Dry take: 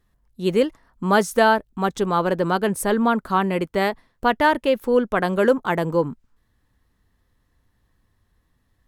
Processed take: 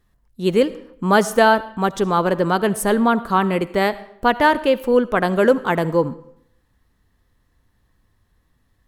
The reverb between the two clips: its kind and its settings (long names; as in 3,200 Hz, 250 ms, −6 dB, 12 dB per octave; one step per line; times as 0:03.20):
comb and all-pass reverb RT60 0.71 s, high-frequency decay 0.8×, pre-delay 30 ms, DRR 16.5 dB
level +2.5 dB